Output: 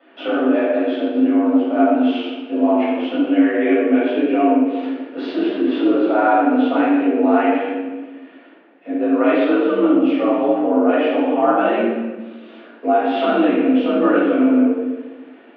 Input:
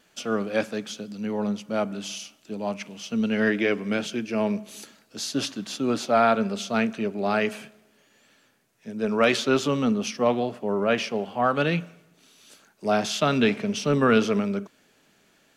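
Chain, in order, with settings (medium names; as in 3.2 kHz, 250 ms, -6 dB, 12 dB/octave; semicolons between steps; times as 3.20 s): tilt shelf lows +6 dB, about 1.2 kHz; compression 6:1, threshold -27 dBFS, peak gain reduction 15.5 dB; mistuned SSB +58 Hz 200–3100 Hz; reverberation RT60 1.2 s, pre-delay 7 ms, DRR -10 dB; modulated delay 120 ms, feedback 50%, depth 80 cents, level -15.5 dB; trim +1.5 dB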